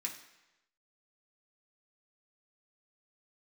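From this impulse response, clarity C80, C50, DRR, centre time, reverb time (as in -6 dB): 11.0 dB, 8.5 dB, -2.0 dB, 21 ms, 1.0 s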